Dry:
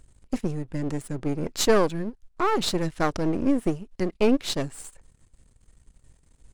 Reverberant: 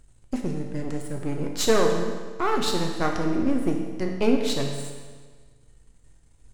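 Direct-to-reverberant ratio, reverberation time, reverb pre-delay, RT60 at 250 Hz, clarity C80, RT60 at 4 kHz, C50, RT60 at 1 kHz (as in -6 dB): 1.5 dB, 1.5 s, 7 ms, 1.5 s, 6.0 dB, 1.4 s, 4.0 dB, 1.5 s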